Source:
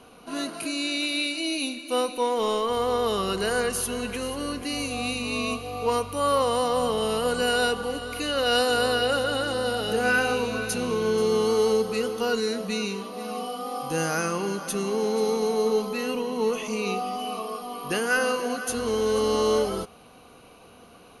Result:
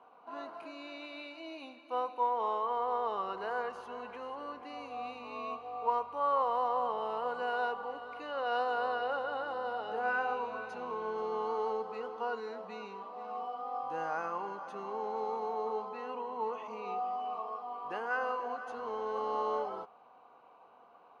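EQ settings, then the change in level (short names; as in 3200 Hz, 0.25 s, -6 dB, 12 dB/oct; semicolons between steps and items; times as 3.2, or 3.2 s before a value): band-pass 900 Hz, Q 3; air absorption 76 m; 0.0 dB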